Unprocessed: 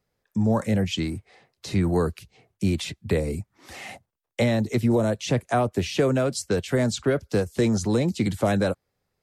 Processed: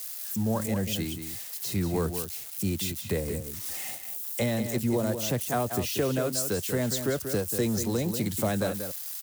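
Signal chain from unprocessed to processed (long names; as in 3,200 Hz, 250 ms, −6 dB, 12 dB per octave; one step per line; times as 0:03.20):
spike at every zero crossing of −27.5 dBFS
high-shelf EQ 6,500 Hz +8 dB
notch filter 2,300 Hz, Q 24
slap from a distant wall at 32 metres, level −8 dB
level −6 dB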